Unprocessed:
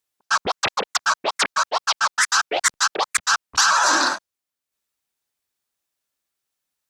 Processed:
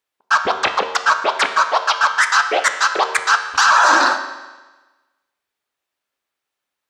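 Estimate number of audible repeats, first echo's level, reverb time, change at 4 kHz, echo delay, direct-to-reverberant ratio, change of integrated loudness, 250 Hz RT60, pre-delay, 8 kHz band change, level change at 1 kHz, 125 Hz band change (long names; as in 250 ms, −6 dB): no echo audible, no echo audible, 1.2 s, +0.5 dB, no echo audible, 6.5 dB, +4.0 dB, 1.2 s, 11 ms, −3.5 dB, +6.5 dB, can't be measured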